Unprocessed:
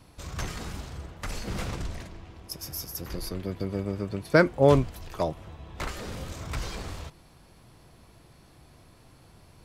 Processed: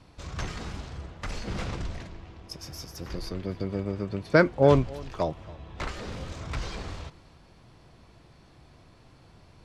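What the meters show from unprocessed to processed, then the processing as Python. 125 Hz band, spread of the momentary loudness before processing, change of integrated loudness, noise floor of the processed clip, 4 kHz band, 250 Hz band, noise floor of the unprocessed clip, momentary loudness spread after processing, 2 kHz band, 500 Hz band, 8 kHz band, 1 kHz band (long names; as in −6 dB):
0.0 dB, 20 LU, 0.0 dB, −56 dBFS, −1.0 dB, 0.0 dB, −56 dBFS, 20 LU, 0.0 dB, 0.0 dB, −5.0 dB, 0.0 dB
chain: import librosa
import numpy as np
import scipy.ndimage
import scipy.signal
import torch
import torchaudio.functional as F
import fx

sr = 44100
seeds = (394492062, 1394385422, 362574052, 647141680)

p1 = scipy.signal.sosfilt(scipy.signal.butter(2, 6000.0, 'lowpass', fs=sr, output='sos'), x)
y = p1 + fx.echo_single(p1, sr, ms=277, db=-21.5, dry=0)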